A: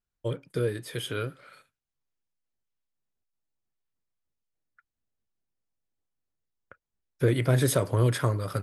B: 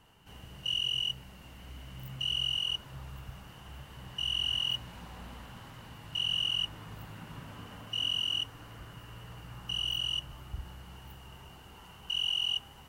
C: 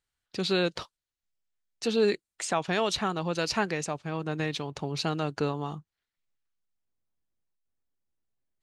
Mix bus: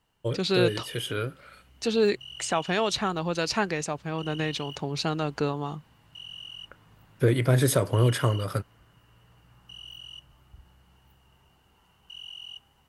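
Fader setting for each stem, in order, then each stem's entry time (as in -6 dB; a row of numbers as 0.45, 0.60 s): +1.5, -11.5, +1.5 dB; 0.00, 0.00, 0.00 s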